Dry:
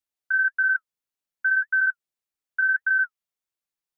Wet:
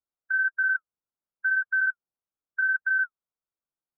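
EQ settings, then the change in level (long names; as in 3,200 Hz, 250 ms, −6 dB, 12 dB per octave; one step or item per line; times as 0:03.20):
linear-phase brick-wall low-pass 1,600 Hz
high-frequency loss of the air 390 metres
0.0 dB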